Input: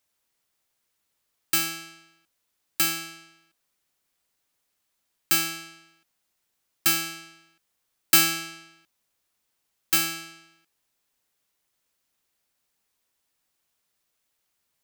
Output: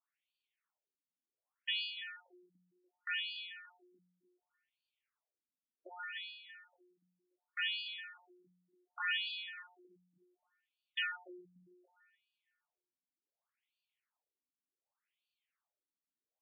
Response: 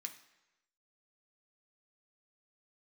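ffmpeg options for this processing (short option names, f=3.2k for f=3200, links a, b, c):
-filter_complex "[0:a]highpass=f=120:p=1,lowshelf=f=400:g=-10,bandreject=f=3.6k:w=8.2,aeval=exprs='0.178*(abs(mod(val(0)/0.178+3,4)-2)-1)':c=same,atempo=0.83,asplit=2[a][b];[b]adelay=315,lowpass=f=1.8k:p=1,volume=-5.5dB,asplit=2[c][d];[d]adelay=315,lowpass=f=1.8k:p=1,volume=0.41,asplit=2[e][f];[f]adelay=315,lowpass=f=1.8k:p=1,volume=0.41,asplit=2[g][h];[h]adelay=315,lowpass=f=1.8k:p=1,volume=0.41,asplit=2[i][j];[j]adelay=315,lowpass=f=1.8k:p=1,volume=0.41[k];[a][c][e][g][i][k]amix=inputs=6:normalize=0,asetrate=48000,aresample=44100,afftfilt=real='re*between(b*sr/1024,210*pow(3400/210,0.5+0.5*sin(2*PI*0.67*pts/sr))/1.41,210*pow(3400/210,0.5+0.5*sin(2*PI*0.67*pts/sr))*1.41)':imag='im*between(b*sr/1024,210*pow(3400/210,0.5+0.5*sin(2*PI*0.67*pts/sr))/1.41,210*pow(3400/210,0.5+0.5*sin(2*PI*0.67*pts/sr))*1.41)':win_size=1024:overlap=0.75,volume=-3.5dB"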